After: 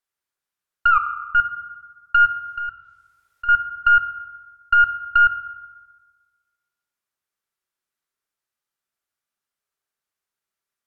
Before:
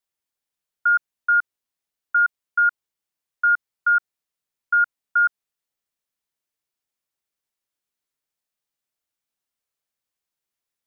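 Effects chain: tracing distortion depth 0.062 ms; low-pass that closes with the level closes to 1.4 kHz, closed at -18 dBFS; 0.90 s: tape stop 0.45 s; peaking EQ 1.4 kHz +7 dB 0.97 oct; 2.25–3.49 s: compressor with a negative ratio -26 dBFS, ratio -1; reverberation RT60 1.4 s, pre-delay 3 ms, DRR 6.5 dB; trim -2 dB

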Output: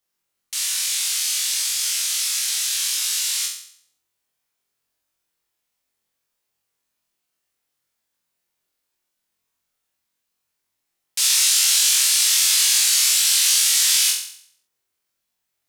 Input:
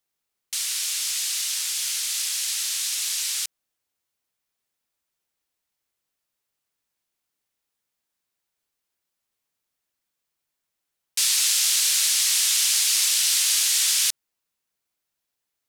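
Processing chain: flutter echo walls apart 3.9 m, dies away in 0.59 s

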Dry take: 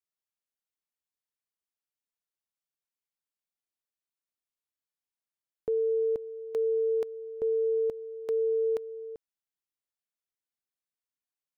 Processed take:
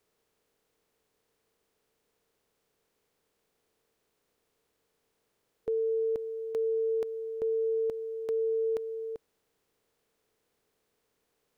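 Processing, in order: spectral levelling over time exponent 0.6; trim -2 dB

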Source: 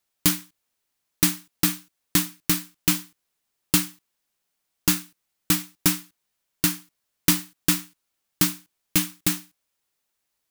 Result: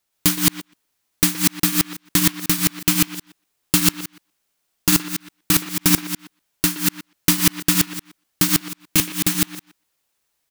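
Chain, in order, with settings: chunks repeated in reverse 123 ms, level 0 dB; speakerphone echo 120 ms, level -12 dB; trim +2.5 dB

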